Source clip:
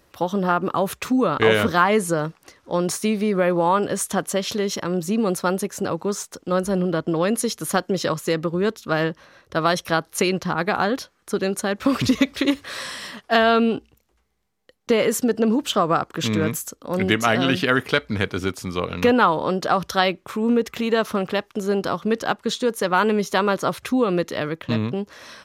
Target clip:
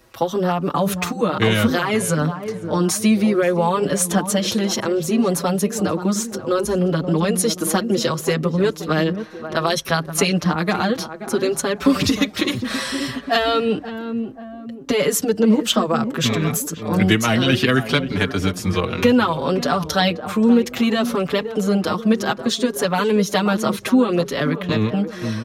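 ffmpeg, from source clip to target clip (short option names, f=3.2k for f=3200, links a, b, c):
-filter_complex "[0:a]acrossover=split=240|3000[a][b][c];[b]acompressor=threshold=-25dB:ratio=3[d];[a][d][c]amix=inputs=3:normalize=0,asplit=2[e][f];[f]adelay=530,lowpass=f=1k:p=1,volume=-9.5dB,asplit=2[g][h];[h]adelay=530,lowpass=f=1k:p=1,volume=0.49,asplit=2[i][j];[j]adelay=530,lowpass=f=1k:p=1,volume=0.49,asplit=2[k][l];[l]adelay=530,lowpass=f=1k:p=1,volume=0.49,asplit=2[m][n];[n]adelay=530,lowpass=f=1k:p=1,volume=0.49[o];[e][g][i][k][m][o]amix=inputs=6:normalize=0,asplit=2[p][q];[q]adelay=5.8,afreqshift=0.63[r];[p][r]amix=inputs=2:normalize=1,volume=8.5dB"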